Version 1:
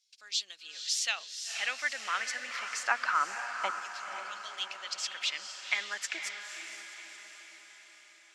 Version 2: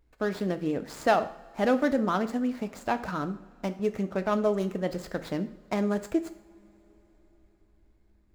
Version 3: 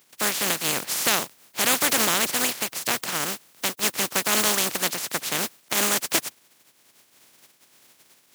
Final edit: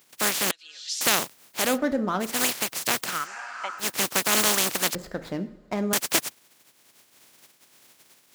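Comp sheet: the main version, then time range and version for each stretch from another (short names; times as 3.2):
3
0.51–1.01 from 1
1.67–2.31 from 2, crossfade 0.24 s
3.16–3.84 from 1, crossfade 0.24 s
4.95–5.93 from 2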